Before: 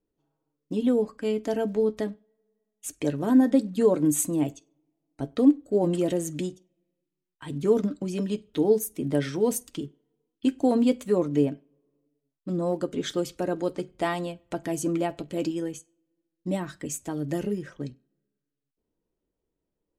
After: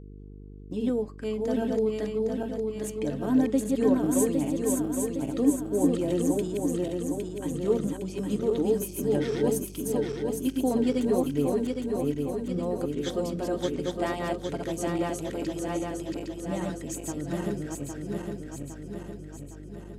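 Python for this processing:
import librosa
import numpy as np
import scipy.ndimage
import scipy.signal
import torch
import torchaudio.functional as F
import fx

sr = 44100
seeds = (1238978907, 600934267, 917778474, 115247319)

y = fx.reverse_delay_fb(x, sr, ms=405, feedback_pct=74, wet_db=-2.0)
y = fx.dmg_buzz(y, sr, base_hz=50.0, harmonics=9, level_db=-40.0, tilt_db=-5, odd_only=False)
y = y * librosa.db_to_amplitude(-4.5)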